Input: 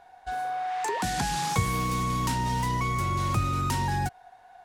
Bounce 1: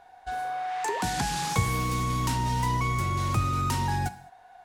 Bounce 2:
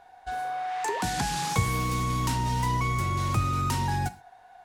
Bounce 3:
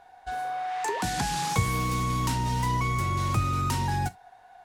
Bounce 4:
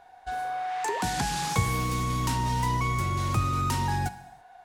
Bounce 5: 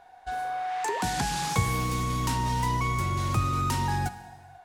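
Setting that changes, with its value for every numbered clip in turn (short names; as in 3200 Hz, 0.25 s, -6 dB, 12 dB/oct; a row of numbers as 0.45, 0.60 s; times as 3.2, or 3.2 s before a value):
non-linear reverb, gate: 240, 150, 90, 360, 530 ms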